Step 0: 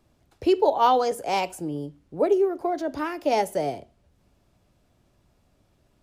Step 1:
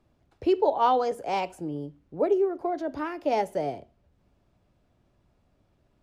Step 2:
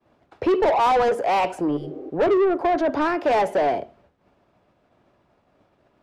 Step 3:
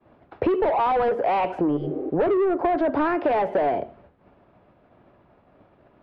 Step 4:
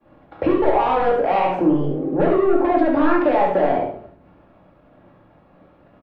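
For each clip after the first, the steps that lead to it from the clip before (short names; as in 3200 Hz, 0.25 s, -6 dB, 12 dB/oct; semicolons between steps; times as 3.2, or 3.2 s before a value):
LPF 2800 Hz 6 dB/oct; gain -2.5 dB
overdrive pedal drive 27 dB, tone 1300 Hz, clips at -11 dBFS; expander -50 dBFS; spectral repair 1.79–2.07, 270–1900 Hz after
compressor 5:1, threshold -26 dBFS, peak gain reduction 9.5 dB; air absorption 350 m; gain +7 dB
echo 71 ms -6 dB; shoebox room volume 480 m³, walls furnished, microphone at 2.3 m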